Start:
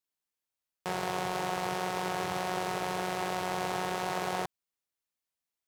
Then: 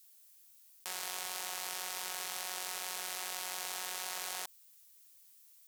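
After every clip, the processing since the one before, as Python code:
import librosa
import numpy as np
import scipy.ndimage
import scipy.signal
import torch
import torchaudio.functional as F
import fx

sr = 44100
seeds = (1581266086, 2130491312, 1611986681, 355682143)

y = np.diff(x, prepend=0.0)
y = fx.env_flatten(y, sr, amount_pct=50)
y = F.gain(torch.from_numpy(y), 4.5).numpy()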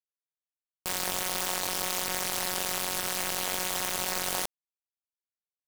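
y = fx.quant_companded(x, sr, bits=2)
y = F.gain(torch.from_numpy(y), 5.5).numpy()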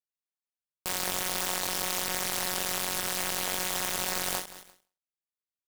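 y = fx.leveller(x, sr, passes=3)
y = fx.echo_feedback(y, sr, ms=174, feedback_pct=37, wet_db=-16.0)
y = fx.end_taper(y, sr, db_per_s=160.0)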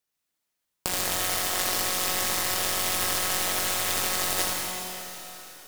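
y = fx.over_compress(x, sr, threshold_db=-35.0, ratio=-0.5)
y = y + 10.0 ** (-5.0 / 20.0) * np.pad(y, (int(78 * sr / 1000.0), 0))[:len(y)]
y = fx.rev_plate(y, sr, seeds[0], rt60_s=3.8, hf_ratio=1.0, predelay_ms=0, drr_db=1.5)
y = F.gain(torch.from_numpy(y), 6.0).numpy()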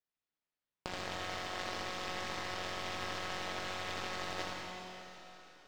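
y = fx.air_absorb(x, sr, metres=180.0)
y = F.gain(torch.from_numpy(y), -8.0).numpy()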